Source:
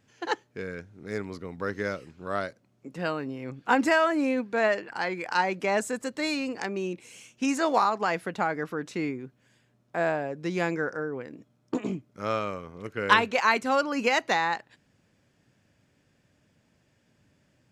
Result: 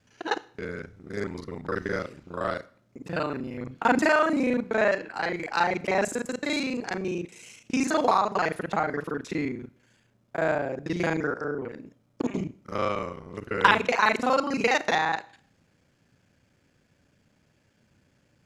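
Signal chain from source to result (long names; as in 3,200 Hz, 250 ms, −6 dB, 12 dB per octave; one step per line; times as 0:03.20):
reversed piece by piece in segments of 33 ms
wrong playback speed 25 fps video run at 24 fps
four-comb reverb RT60 0.53 s, combs from 25 ms, DRR 18 dB
level +1.5 dB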